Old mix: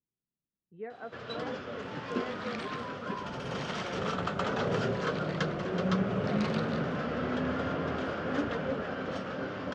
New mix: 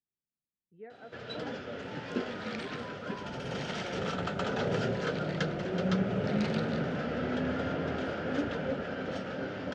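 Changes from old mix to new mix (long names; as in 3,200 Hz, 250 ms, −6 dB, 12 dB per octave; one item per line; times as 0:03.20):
speech −6.5 dB
master: add parametric band 1,100 Hz −14 dB 0.2 octaves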